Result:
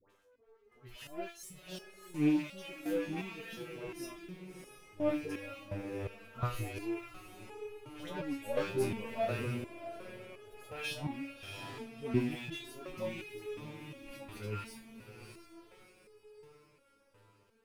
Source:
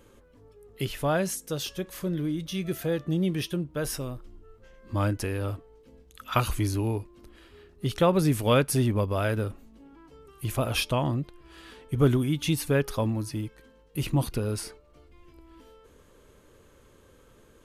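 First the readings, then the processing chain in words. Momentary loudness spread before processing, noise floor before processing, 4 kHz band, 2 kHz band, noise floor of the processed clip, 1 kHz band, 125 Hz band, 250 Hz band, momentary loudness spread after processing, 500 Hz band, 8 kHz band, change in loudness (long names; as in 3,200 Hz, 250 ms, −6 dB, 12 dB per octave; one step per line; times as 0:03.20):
12 LU, −58 dBFS, −12.0 dB, −8.0 dB, −68 dBFS, −11.5 dB, −15.0 dB, −8.5 dB, 18 LU, −9.5 dB, −15.5 dB, −11.0 dB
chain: loose part that buzzes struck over −34 dBFS, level −26 dBFS
reverb reduction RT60 0.78 s
high-shelf EQ 2,500 Hz −9 dB
harmonic and percussive parts rebalanced percussive −14 dB
bass and treble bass −12 dB, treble +1 dB
in parallel at −0.5 dB: downward compressor, threshold −42 dBFS, peak gain reduction 18 dB
on the sum: leveller curve on the samples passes 3
volume swells 152 ms
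all-pass dispersion highs, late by 96 ms, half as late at 1,100 Hz
on a send: feedback delay with all-pass diffusion 659 ms, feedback 47%, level −7.5 dB
on the sum: step-sequenced resonator 2.8 Hz 99–420 Hz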